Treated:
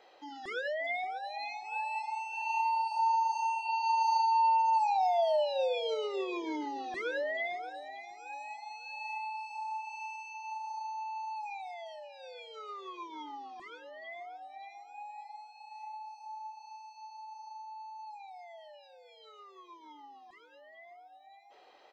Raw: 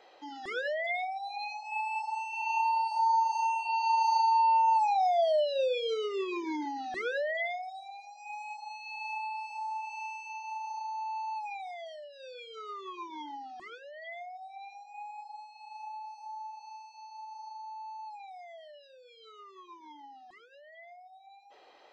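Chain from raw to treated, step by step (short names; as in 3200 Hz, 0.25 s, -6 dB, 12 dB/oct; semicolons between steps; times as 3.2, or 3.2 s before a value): feedback echo 0.583 s, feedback 32%, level -14.5 dB; gain -2 dB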